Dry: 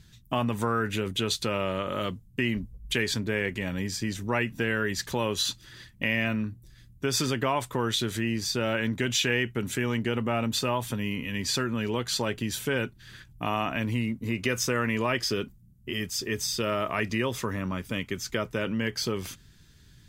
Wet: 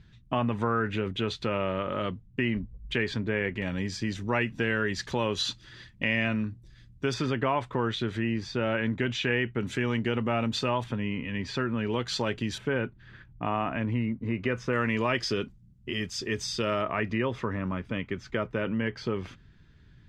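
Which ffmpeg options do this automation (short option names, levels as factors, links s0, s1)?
-af "asetnsamples=n=441:p=0,asendcmd='3.62 lowpass f 4800;7.14 lowpass f 2600;9.61 lowpass f 4400;10.84 lowpass f 2500;11.9 lowpass f 4700;12.58 lowpass f 1900;14.73 lowpass f 5100;16.82 lowpass f 2300',lowpass=2700"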